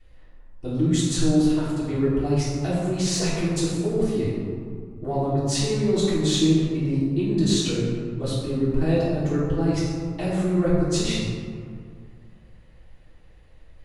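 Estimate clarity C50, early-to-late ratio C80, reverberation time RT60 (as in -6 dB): -1.5 dB, 0.5 dB, 2.2 s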